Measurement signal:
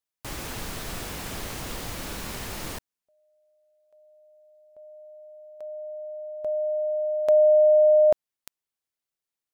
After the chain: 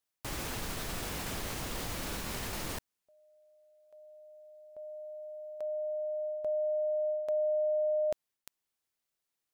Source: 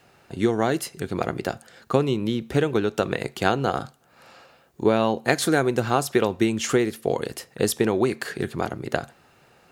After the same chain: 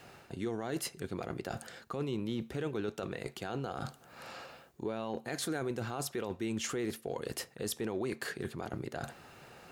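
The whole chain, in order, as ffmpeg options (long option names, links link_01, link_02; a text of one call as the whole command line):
ffmpeg -i in.wav -af "alimiter=limit=-13.5dB:level=0:latency=1:release=15,areverse,acompressor=threshold=-32dB:ratio=6:attack=0.25:release=402:knee=6:detection=peak,areverse,volume=2.5dB" out.wav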